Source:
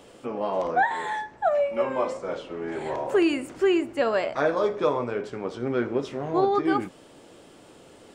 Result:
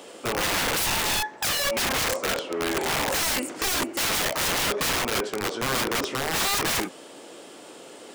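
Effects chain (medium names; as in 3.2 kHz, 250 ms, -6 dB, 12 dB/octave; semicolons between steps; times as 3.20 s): high-pass 270 Hz 12 dB/octave; treble shelf 3.6 kHz +4.5 dB; integer overflow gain 26.5 dB; trim +6.5 dB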